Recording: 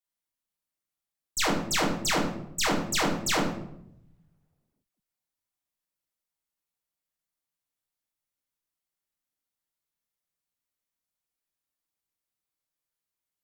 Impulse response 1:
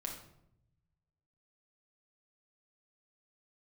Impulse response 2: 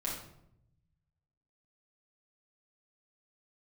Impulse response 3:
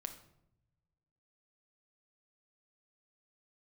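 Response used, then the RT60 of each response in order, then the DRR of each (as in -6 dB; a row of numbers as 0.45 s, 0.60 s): 2; 0.75 s, 0.75 s, 0.80 s; -0.5 dB, -5.5 dB, 6.0 dB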